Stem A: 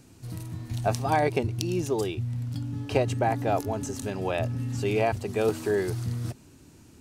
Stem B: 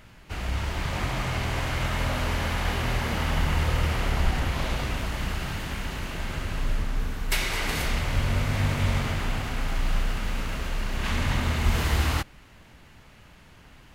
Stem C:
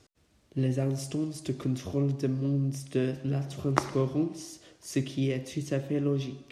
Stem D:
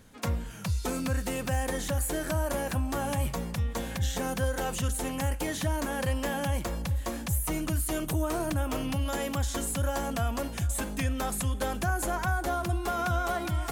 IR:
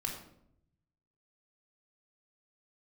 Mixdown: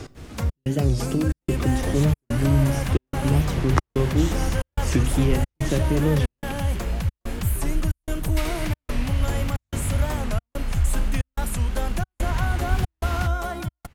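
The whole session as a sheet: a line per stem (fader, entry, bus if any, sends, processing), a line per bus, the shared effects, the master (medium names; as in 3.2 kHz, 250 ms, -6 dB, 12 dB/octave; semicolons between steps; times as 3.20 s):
-18.0 dB, 1.90 s, no send, none
-6.5 dB, 1.05 s, no send, none
+2.5 dB, 0.00 s, send -13.5 dB, three bands compressed up and down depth 70%
0.0 dB, 0.15 s, no send, none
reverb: on, RT60 0.70 s, pre-delay 3 ms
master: trance gate "xxxxxx..xx" 182 bpm -60 dB; bass shelf 120 Hz +9 dB; warped record 45 rpm, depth 160 cents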